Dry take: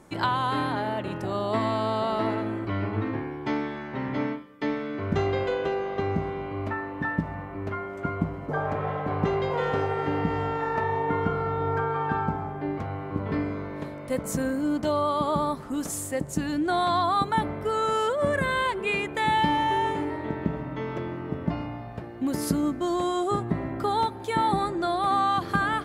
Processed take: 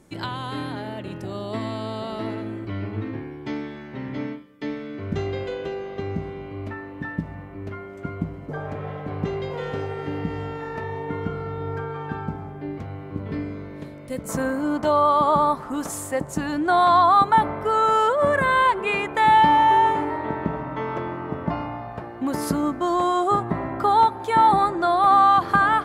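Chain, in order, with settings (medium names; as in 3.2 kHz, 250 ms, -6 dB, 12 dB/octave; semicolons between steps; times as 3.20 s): peaking EQ 1 kHz -7.5 dB 1.7 oct, from 14.29 s +9.5 dB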